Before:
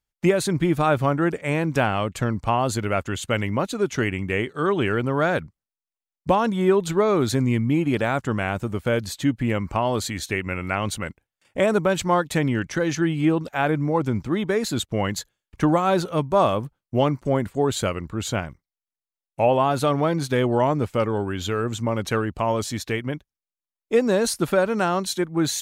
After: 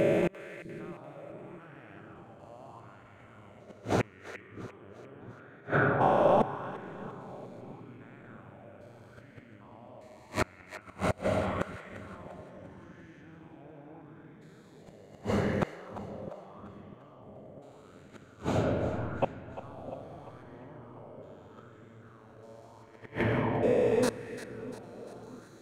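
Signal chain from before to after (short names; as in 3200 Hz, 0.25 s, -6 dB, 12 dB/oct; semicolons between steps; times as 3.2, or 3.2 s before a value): stepped spectrum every 0.4 s; digital reverb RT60 3.3 s, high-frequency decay 0.35×, pre-delay 0.115 s, DRR 0.5 dB; flipped gate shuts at -17 dBFS, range -31 dB; on a send: split-band echo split 410 Hz, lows 0.65 s, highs 0.347 s, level -13.5 dB; on the sum: LFO bell 0.8 Hz 580–1900 Hz +9 dB; gain +1 dB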